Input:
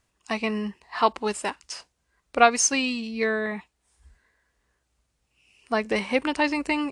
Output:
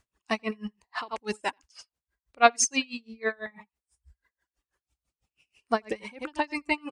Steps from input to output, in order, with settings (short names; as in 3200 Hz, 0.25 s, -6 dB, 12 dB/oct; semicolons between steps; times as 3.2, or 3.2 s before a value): reverb removal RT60 1.4 s; on a send: echo 85 ms -14.5 dB; on the sum: dB-linear tremolo 6.1 Hz, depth 29 dB; gain +1.5 dB